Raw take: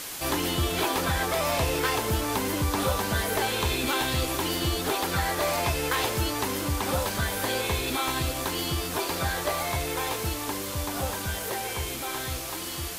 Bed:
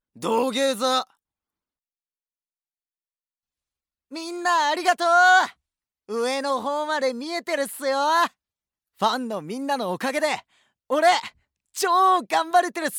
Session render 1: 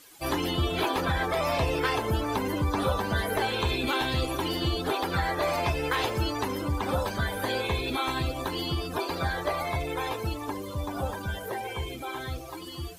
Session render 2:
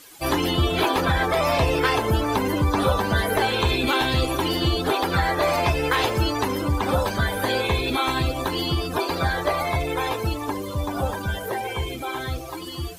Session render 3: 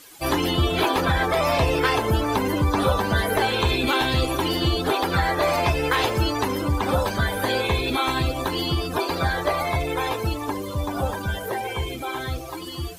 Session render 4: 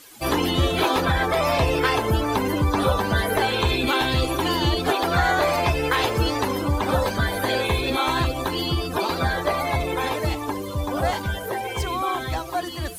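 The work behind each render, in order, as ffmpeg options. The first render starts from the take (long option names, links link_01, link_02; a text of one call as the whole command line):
ffmpeg -i in.wav -af "afftdn=noise_reduction=18:noise_floor=-34" out.wav
ffmpeg -i in.wav -af "volume=6dB" out.wav
ffmpeg -i in.wav -af anull out.wav
ffmpeg -i in.wav -i bed.wav -filter_complex "[1:a]volume=-9dB[link_01];[0:a][link_01]amix=inputs=2:normalize=0" out.wav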